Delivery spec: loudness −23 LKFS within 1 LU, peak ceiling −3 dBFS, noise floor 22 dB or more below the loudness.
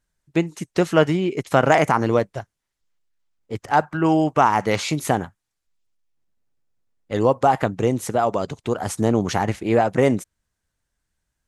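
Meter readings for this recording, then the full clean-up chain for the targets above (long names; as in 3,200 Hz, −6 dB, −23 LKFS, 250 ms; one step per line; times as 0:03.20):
integrated loudness −21.0 LKFS; sample peak −2.0 dBFS; target loudness −23.0 LKFS
→ level −2 dB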